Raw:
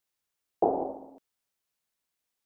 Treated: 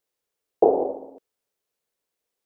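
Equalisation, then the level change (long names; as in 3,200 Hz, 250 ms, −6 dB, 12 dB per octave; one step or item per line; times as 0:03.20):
parametric band 460 Hz +12 dB 0.91 octaves
0.0 dB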